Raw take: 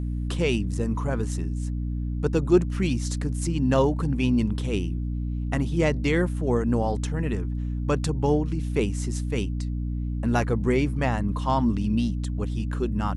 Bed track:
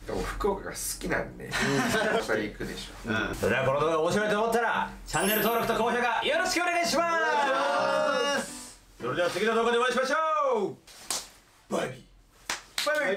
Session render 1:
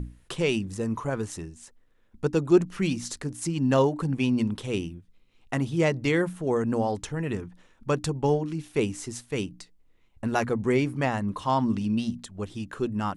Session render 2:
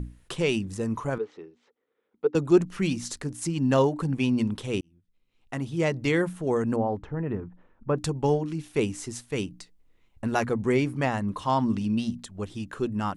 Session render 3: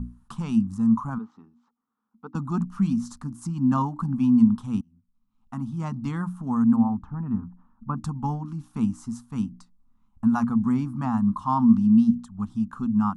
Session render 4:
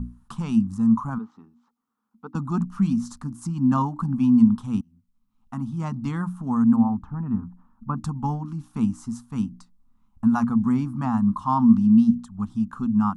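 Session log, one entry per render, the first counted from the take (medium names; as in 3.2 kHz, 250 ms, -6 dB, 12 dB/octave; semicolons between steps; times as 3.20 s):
hum notches 60/120/180/240/300 Hz
1.18–2.35 s: cabinet simulation 440–3000 Hz, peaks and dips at 440 Hz +9 dB, 640 Hz -8 dB, 1 kHz -6 dB, 1.7 kHz -10 dB, 2.7 kHz -8 dB; 4.81–6.12 s: fade in; 6.76–7.98 s: low-pass 1.3 kHz
FFT filter 160 Hz 0 dB, 230 Hz +12 dB, 360 Hz -20 dB, 540 Hz -23 dB, 820 Hz 0 dB, 1.2 kHz +5 dB, 2 kHz -19 dB, 5.7 kHz -10 dB
trim +1.5 dB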